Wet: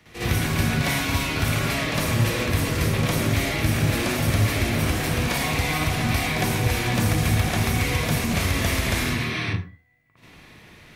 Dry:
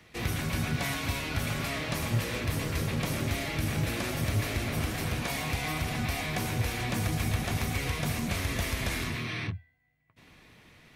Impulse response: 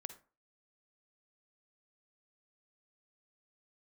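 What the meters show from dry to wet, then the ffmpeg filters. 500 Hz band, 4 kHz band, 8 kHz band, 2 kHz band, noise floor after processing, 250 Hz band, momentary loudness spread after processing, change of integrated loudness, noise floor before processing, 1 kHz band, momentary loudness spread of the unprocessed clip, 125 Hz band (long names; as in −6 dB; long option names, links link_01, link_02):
+8.5 dB, +8.0 dB, +8.0 dB, +8.0 dB, −49 dBFS, +8.5 dB, 2 LU, +8.0 dB, −59 dBFS, +8.0 dB, 2 LU, +8.5 dB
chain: -filter_complex "[0:a]asplit=2[link_01][link_02];[1:a]atrim=start_sample=2205,adelay=57[link_03];[link_02][link_03]afir=irnorm=-1:irlink=0,volume=11.5dB[link_04];[link_01][link_04]amix=inputs=2:normalize=0"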